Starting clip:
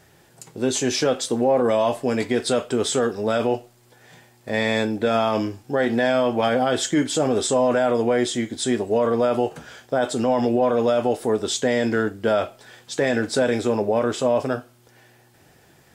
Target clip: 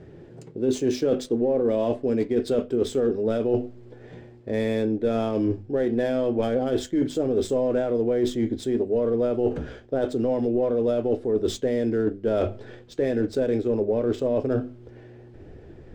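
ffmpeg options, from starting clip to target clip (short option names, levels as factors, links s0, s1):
-af "bandreject=f=50:t=h:w=6,bandreject=f=100:t=h:w=6,bandreject=f=150:t=h:w=6,bandreject=f=200:t=h:w=6,bandreject=f=250:t=h:w=6,adynamicsmooth=sensitivity=4:basefreq=2800,lowshelf=f=600:t=q:w=1.5:g=11.5,areverse,acompressor=threshold=0.1:ratio=6,areverse,asubboost=boost=7:cutoff=55"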